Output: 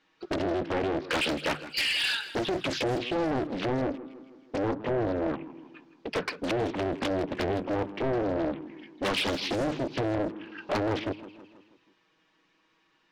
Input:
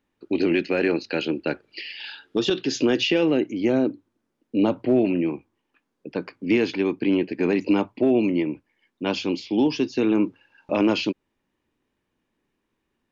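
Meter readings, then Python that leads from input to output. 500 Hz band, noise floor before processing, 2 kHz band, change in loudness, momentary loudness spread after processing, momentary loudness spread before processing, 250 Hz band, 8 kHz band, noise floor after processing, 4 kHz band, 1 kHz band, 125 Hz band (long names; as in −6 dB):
−5.5 dB, −77 dBFS, −1.5 dB, −6.5 dB, 10 LU, 12 LU, −9.5 dB, can't be measured, −69 dBFS, −1.0 dB, +1.5 dB, −1.5 dB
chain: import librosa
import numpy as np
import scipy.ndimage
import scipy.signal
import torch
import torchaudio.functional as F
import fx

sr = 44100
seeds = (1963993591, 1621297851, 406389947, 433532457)

p1 = fx.env_flanger(x, sr, rest_ms=6.3, full_db=-16.0)
p2 = scipy.signal.sosfilt(scipy.signal.butter(4, 5300.0, 'lowpass', fs=sr, output='sos'), p1)
p3 = fx.hum_notches(p2, sr, base_hz=50, count=3)
p4 = fx.env_lowpass_down(p3, sr, base_hz=740.0, full_db=-21.5)
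p5 = fx.peak_eq(p4, sr, hz=1200.0, db=4.0, octaves=0.65)
p6 = fx.over_compress(p5, sr, threshold_db=-28.0, ratio=-1.0)
p7 = p5 + (p6 * 10.0 ** (3.0 / 20.0))
p8 = fx.tilt_eq(p7, sr, slope=3.0)
p9 = 10.0 ** (-23.0 / 20.0) * np.tanh(p8 / 10.0 ** (-23.0 / 20.0))
p10 = fx.echo_feedback(p9, sr, ms=161, feedback_pct=53, wet_db=-15)
y = fx.doppler_dist(p10, sr, depth_ms=0.97)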